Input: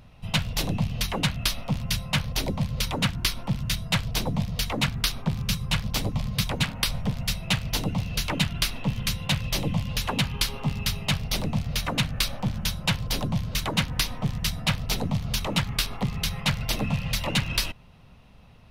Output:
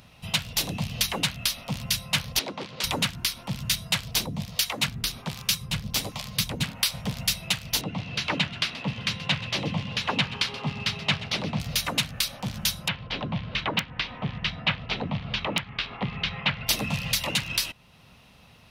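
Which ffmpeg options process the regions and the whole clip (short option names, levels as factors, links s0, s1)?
-filter_complex "[0:a]asettb=1/sr,asplit=3[s0][s1][s2];[s0]atrim=end=2.394[s3];[s1]atrim=start=2.39:end=2.84,asetpts=PTS-STARTPTS,afade=t=in:d=0.004:c=qsin,afade=t=out:st=0.446:d=0.004:c=qsin,aeval=exprs='0.0708*(abs(mod(val(0)/0.0708+3,4)-2)-1)':c=same,highpass=260,lowpass=3900[s4];[s2]atrim=start=2.836[s5];[s3][s4]acrossfade=d=0.004:c1=hsin:c2=qsin[s6];[s6][s5]acrossfade=d=0.004:c1=qsin:c2=hsin,asettb=1/sr,asplit=3[s7][s8][s9];[s7]atrim=end=4.264[s10];[s8]atrim=start=4.26:end=6.94,asetpts=PTS-STARTPTS,afade=t=in:d=0.004:c=qsin,afade=t=out:st=2.676:d=0.004:c=qsin,acrossover=split=480[s11][s12];[s11]aeval=exprs='val(0)*(1-0.7/2+0.7/2*cos(2*PI*1.3*n/s))':c=same[s13];[s12]aeval=exprs='val(0)*(1-0.7/2-0.7/2*cos(2*PI*1.3*n/s))':c=same[s14];[s13][s14]amix=inputs=2:normalize=0,volume=7.08,asoftclip=hard,volume=0.141[s15];[s9]atrim=start=6.936[s16];[s10][s15]acrossfade=d=0.004:c1=hsin:c2=qsin[s17];[s17][s16]acrossfade=d=0.004:c1=qsin:c2=hsin,asettb=1/sr,asplit=3[s18][s19][s20];[s18]atrim=end=7.814[s21];[s19]atrim=start=7.81:end=11.6,asetpts=PTS-STARTPTS,afade=t=in:d=0.004:c=qsin,afade=t=out:st=3.786:d=0.004:c=qsin,highpass=100,lowpass=3000,aecho=1:1:129|258|387|516:0.168|0.0722|0.031|0.0133,atrim=end_sample=167139[s22];[s20]atrim=start=11.596[s23];[s21][s22]acrossfade=d=0.004:c1=hsin:c2=qsin[s24];[s24][s23]acrossfade=d=0.004:c1=qsin:c2=hsin,asettb=1/sr,asplit=3[s25][s26][s27];[s25]atrim=end=12.884[s28];[s26]atrim=start=12.88:end=16.67,asetpts=PTS-STARTPTS,afade=t=in:d=0.004:c=qsin,afade=t=out:st=3.786:d=0.004:c=qsin,lowpass=f=3100:w=0.5412,lowpass=f=3100:w=1.3066,lowshelf=f=130:g=-3.5,aeval=exprs='(mod(3.98*val(0)+1,2)-1)/3.98':c=same[s29];[s27]atrim=start=16.666[s30];[s28][s29]acrossfade=d=0.004:c1=hsin:c2=qsin[s31];[s31][s30]acrossfade=d=0.004:c1=qsin:c2=hsin,highpass=f=110:p=1,highshelf=f=2000:g=9.5,alimiter=limit=0.299:level=0:latency=1:release=493"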